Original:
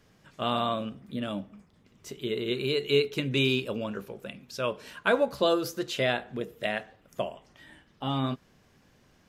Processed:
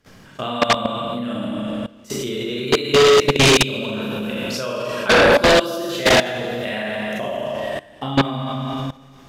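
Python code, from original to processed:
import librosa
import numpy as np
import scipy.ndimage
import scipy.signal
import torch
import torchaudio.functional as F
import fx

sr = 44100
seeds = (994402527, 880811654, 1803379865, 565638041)

y = fx.rev_schroeder(x, sr, rt60_s=1.8, comb_ms=29, drr_db=-6.5)
y = fx.level_steps(y, sr, step_db=20)
y = fx.fold_sine(y, sr, drive_db=11, ceiling_db=-8.5)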